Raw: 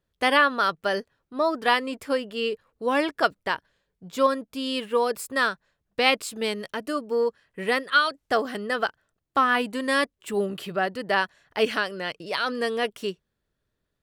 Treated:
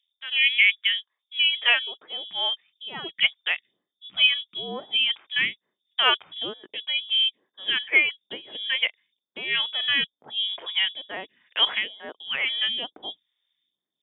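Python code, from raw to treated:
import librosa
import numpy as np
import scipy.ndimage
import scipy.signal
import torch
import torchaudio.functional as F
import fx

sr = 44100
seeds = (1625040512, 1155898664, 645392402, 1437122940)

y = fx.freq_invert(x, sr, carrier_hz=3600)
y = fx.filter_sweep_highpass(y, sr, from_hz=2600.0, to_hz=220.0, start_s=0.43, end_s=2.41, q=1.6)
y = fx.phaser_stages(y, sr, stages=2, low_hz=190.0, high_hz=2700.0, hz=1.1, feedback_pct=25)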